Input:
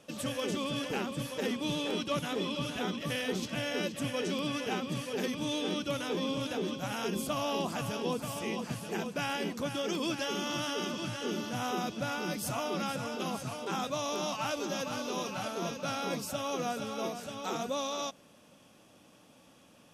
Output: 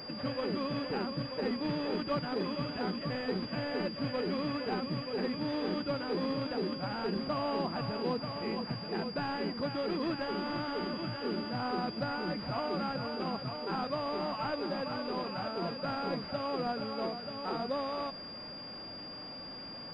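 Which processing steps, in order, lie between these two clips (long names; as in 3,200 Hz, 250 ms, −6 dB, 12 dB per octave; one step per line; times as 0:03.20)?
linear delta modulator 32 kbit/s, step −41 dBFS
switching amplifier with a slow clock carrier 4,800 Hz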